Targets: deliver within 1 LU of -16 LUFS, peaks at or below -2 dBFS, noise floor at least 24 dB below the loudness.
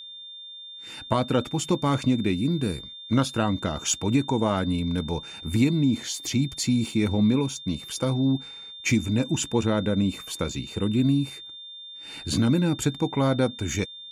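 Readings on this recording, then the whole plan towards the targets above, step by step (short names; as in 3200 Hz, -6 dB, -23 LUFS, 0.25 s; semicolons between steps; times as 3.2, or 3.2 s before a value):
steady tone 3600 Hz; tone level -39 dBFS; loudness -25.5 LUFS; peak -8.5 dBFS; loudness target -16.0 LUFS
-> notch 3600 Hz, Q 30; gain +9.5 dB; limiter -2 dBFS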